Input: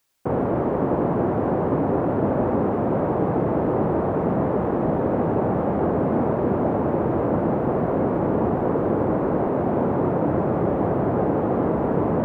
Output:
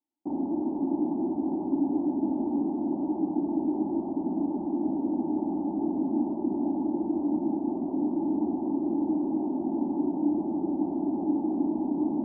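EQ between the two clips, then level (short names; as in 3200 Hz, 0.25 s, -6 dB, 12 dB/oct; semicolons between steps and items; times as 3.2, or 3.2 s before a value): vocal tract filter u; HPF 130 Hz 6 dB/oct; fixed phaser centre 470 Hz, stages 6; +3.0 dB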